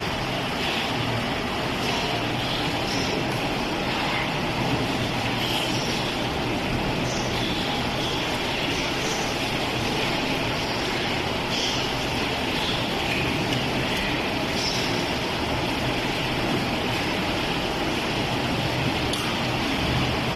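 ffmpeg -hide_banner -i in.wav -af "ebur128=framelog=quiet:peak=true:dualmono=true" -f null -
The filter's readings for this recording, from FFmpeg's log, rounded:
Integrated loudness:
  I:         -21.4 LUFS
  Threshold: -31.4 LUFS
Loudness range:
  LRA:         0.7 LU
  Threshold: -41.4 LUFS
  LRA low:   -21.7 LUFS
  LRA high:  -21.0 LUFS
True peak:
  Peak:      -11.2 dBFS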